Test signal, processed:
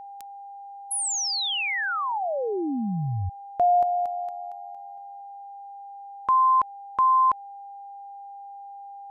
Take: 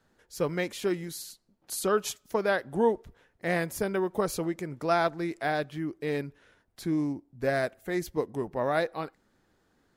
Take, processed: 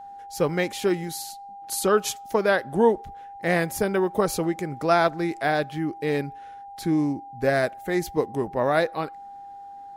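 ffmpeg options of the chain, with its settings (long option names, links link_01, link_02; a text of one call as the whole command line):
ffmpeg -i in.wav -af "aeval=exprs='val(0)+0.00631*sin(2*PI*800*n/s)':channel_layout=same,volume=5.5dB" out.wav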